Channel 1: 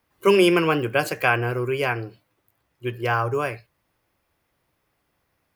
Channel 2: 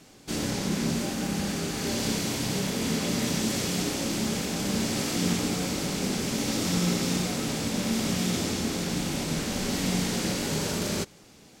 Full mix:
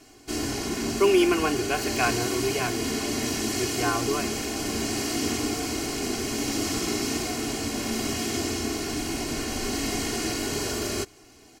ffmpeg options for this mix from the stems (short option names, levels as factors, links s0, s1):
-filter_complex "[0:a]adelay=750,volume=0.422[s0];[1:a]bandreject=f=3600:w=9.3,volume=0.891[s1];[s0][s1]amix=inputs=2:normalize=0,aecho=1:1:2.8:0.84"